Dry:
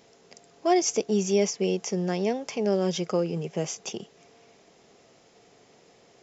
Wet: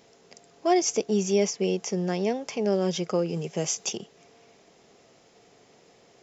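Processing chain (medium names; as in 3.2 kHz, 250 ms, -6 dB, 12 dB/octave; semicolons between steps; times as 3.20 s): 3.28–3.96 s: treble shelf 5.6 kHz -> 3.6 kHz +9.5 dB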